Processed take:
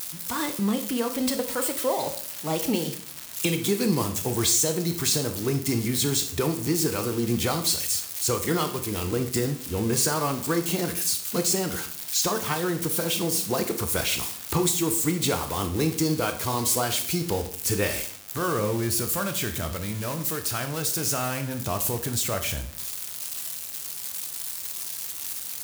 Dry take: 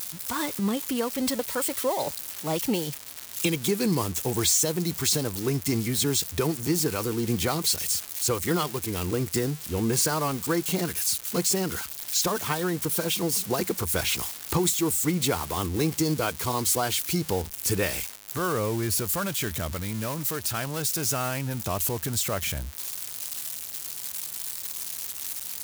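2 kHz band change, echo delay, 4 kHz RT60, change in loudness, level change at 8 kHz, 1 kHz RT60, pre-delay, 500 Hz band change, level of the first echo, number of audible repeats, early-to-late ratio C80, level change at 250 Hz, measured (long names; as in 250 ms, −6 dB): +0.5 dB, no echo audible, 0.45 s, +1.0 dB, +1.0 dB, 0.50 s, 17 ms, +1.0 dB, no echo audible, no echo audible, 15.0 dB, +1.0 dB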